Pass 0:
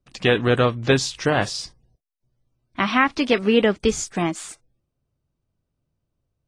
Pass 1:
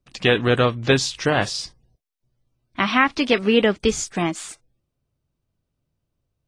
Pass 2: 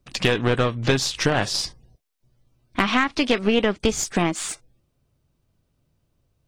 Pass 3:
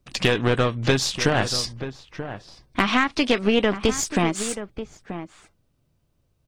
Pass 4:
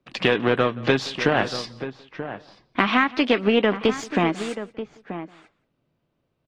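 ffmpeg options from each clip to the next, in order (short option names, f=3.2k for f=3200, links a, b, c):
-af "equalizer=f=3.3k:t=o:w=1.7:g=2.5"
-af "acompressor=threshold=-28dB:ratio=3,aeval=exprs='0.188*(cos(1*acos(clip(val(0)/0.188,-1,1)))-cos(1*PI/2))+0.0211*(cos(4*acos(clip(val(0)/0.188,-1,1)))-cos(4*PI/2))':c=same,volume=7.5dB"
-filter_complex "[0:a]asplit=2[a][b];[b]adelay=932.9,volume=-11dB,highshelf=f=4k:g=-21[c];[a][c]amix=inputs=2:normalize=0"
-filter_complex "[0:a]acrossover=split=150 3900:gain=0.141 1 0.1[a][b][c];[a][b][c]amix=inputs=3:normalize=0,asplit=2[d][e];[e]adelay=174.9,volume=-21dB,highshelf=f=4k:g=-3.94[f];[d][f]amix=inputs=2:normalize=0,volume=1.5dB"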